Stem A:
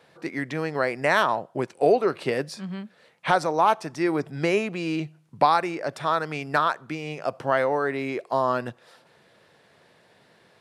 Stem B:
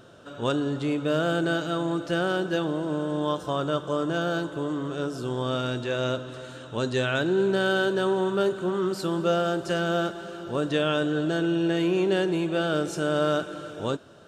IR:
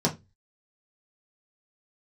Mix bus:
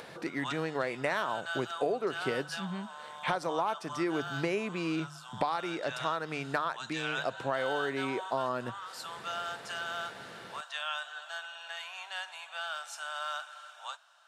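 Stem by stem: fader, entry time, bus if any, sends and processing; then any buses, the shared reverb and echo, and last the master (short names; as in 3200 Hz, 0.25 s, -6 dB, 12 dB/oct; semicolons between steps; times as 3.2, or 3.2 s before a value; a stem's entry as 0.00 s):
-4.5 dB, 0.00 s, no send, notches 50/100/150 Hz; upward compressor, threshold -31 dBFS
-5.5 dB, 0.00 s, no send, steep high-pass 760 Hz 48 dB/oct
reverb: off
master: compressor 6:1, threshold -27 dBFS, peak gain reduction 9.5 dB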